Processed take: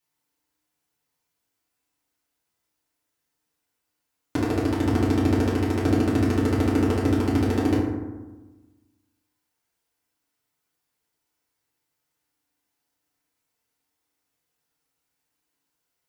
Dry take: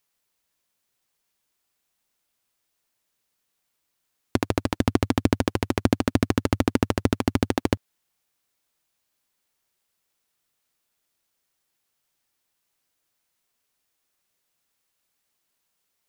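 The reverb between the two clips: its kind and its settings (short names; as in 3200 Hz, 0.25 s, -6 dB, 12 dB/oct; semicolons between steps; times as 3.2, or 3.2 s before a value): FDN reverb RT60 1.2 s, low-frequency decay 1.25×, high-frequency decay 0.4×, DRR -8.5 dB; gain -10 dB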